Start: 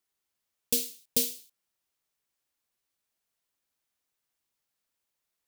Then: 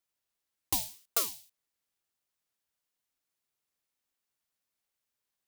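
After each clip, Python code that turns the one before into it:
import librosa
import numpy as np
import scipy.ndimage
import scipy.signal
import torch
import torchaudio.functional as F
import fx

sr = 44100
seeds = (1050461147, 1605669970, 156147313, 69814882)

y = fx.ring_lfo(x, sr, carrier_hz=700.0, swing_pct=45, hz=1.8)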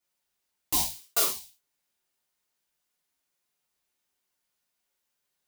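y = fx.rev_gated(x, sr, seeds[0], gate_ms=130, shape='falling', drr_db=-7.0)
y = y * librosa.db_to_amplitude(-2.0)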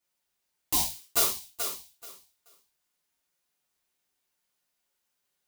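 y = fx.echo_feedback(x, sr, ms=431, feedback_pct=20, wet_db=-7.5)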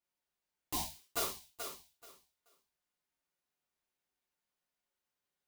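y = fx.high_shelf(x, sr, hz=3300.0, db=-8.0)
y = y * librosa.db_to_amplitude(-5.5)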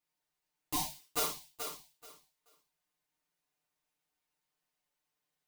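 y = x + 0.94 * np.pad(x, (int(6.6 * sr / 1000.0), 0))[:len(x)]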